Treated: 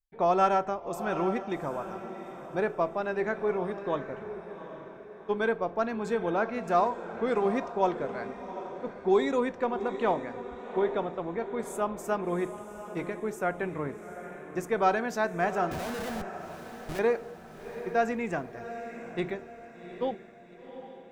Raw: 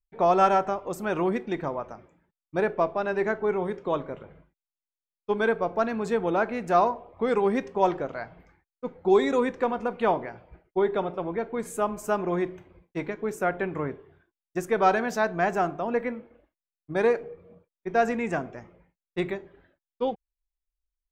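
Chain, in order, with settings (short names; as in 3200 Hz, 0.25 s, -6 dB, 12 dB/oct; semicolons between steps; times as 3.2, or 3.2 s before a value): 15.71–16.99 Schmitt trigger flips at -42.5 dBFS; diffused feedback echo 0.767 s, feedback 45%, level -11 dB; gain -3.5 dB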